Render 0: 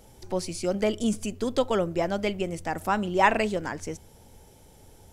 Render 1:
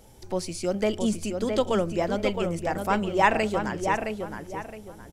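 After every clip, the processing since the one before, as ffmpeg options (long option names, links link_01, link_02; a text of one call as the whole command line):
ffmpeg -i in.wav -filter_complex "[0:a]asplit=2[link_01][link_02];[link_02]adelay=666,lowpass=frequency=3000:poles=1,volume=-5dB,asplit=2[link_03][link_04];[link_04]adelay=666,lowpass=frequency=3000:poles=1,volume=0.31,asplit=2[link_05][link_06];[link_06]adelay=666,lowpass=frequency=3000:poles=1,volume=0.31,asplit=2[link_07][link_08];[link_08]adelay=666,lowpass=frequency=3000:poles=1,volume=0.31[link_09];[link_01][link_03][link_05][link_07][link_09]amix=inputs=5:normalize=0" out.wav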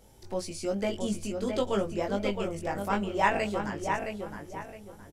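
ffmpeg -i in.wav -filter_complex "[0:a]asplit=2[link_01][link_02];[link_02]adelay=20,volume=-3dB[link_03];[link_01][link_03]amix=inputs=2:normalize=0,volume=-6dB" out.wav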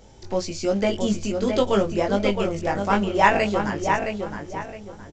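ffmpeg -i in.wav -filter_complex "[0:a]asplit=2[link_01][link_02];[link_02]acrusher=bits=4:mode=log:mix=0:aa=0.000001,volume=-6dB[link_03];[link_01][link_03]amix=inputs=2:normalize=0,aresample=16000,aresample=44100,volume=4.5dB" out.wav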